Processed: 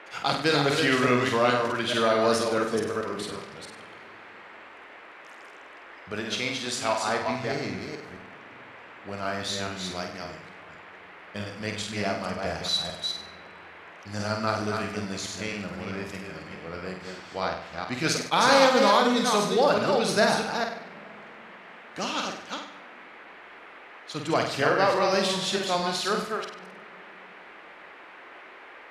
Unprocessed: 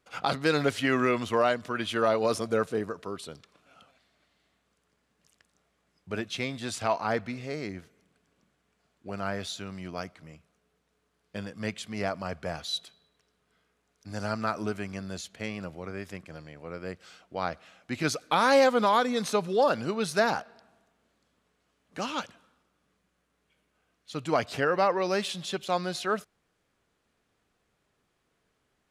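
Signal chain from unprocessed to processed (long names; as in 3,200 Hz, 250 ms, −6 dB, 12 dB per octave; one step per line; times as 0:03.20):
delay that plays each chunk backwards 215 ms, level −4 dB
0:06.12–0:07.22: low-shelf EQ 190 Hz −8.5 dB
flutter between parallel walls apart 8.3 metres, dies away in 0.53 s
noise in a band 300–2,200 Hz −48 dBFS
parametric band 4,800 Hz +5.5 dB 1.7 octaves
convolution reverb RT60 3.3 s, pre-delay 5 ms, DRR 16.5 dB
level that may rise only so fast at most 520 dB per second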